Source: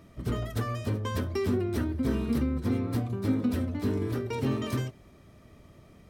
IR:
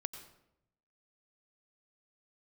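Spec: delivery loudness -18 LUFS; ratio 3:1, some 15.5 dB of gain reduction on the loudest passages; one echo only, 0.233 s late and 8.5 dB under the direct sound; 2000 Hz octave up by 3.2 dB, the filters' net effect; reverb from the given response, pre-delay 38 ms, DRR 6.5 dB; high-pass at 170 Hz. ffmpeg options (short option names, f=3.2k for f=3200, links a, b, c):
-filter_complex "[0:a]highpass=170,equalizer=f=2k:t=o:g=4,acompressor=threshold=-47dB:ratio=3,aecho=1:1:233:0.376,asplit=2[a][b];[1:a]atrim=start_sample=2205,adelay=38[c];[b][c]afir=irnorm=-1:irlink=0,volume=-5.5dB[d];[a][d]amix=inputs=2:normalize=0,volume=26dB"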